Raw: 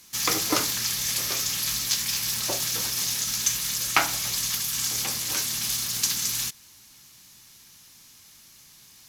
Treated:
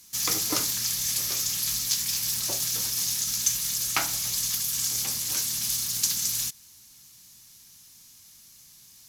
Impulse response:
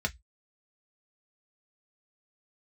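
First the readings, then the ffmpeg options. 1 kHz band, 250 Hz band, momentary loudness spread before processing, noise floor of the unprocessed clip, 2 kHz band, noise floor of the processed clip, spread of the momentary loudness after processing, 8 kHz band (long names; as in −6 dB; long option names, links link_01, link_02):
−7.0 dB, −5.0 dB, 3 LU, −52 dBFS, −6.5 dB, −53 dBFS, 2 LU, 0.0 dB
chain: -af "bass=frequency=250:gain=5,treble=frequency=4000:gain=8,volume=-7dB"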